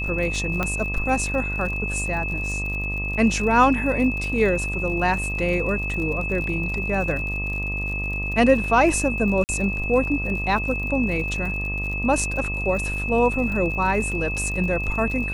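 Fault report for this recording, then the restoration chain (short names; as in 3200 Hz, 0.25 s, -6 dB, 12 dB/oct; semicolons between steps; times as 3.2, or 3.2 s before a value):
buzz 50 Hz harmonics 25 -29 dBFS
crackle 57/s -31 dBFS
tone 2600 Hz -27 dBFS
0.63 pop -10 dBFS
9.44–9.49 gap 49 ms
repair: de-click; de-hum 50 Hz, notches 25; notch 2600 Hz, Q 30; interpolate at 9.44, 49 ms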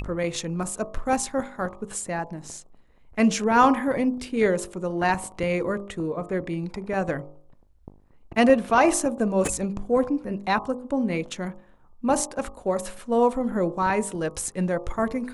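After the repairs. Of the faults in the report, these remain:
0.63 pop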